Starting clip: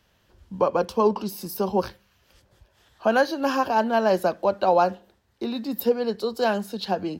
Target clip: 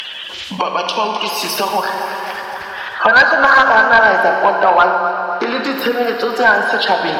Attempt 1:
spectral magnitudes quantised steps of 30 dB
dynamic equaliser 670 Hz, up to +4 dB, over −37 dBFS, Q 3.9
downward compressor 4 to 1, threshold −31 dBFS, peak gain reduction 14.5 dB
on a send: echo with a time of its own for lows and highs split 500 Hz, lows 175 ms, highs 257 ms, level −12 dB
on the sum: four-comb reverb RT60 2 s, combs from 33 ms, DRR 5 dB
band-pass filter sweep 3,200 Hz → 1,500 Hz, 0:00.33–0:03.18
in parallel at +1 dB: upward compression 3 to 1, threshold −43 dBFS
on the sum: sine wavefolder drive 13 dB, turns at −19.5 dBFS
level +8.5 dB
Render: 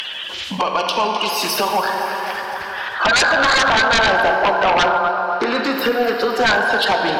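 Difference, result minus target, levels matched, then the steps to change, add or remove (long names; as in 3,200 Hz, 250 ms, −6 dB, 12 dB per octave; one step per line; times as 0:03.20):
sine wavefolder: distortion +14 dB
change: sine wavefolder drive 13 dB, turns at −11.5 dBFS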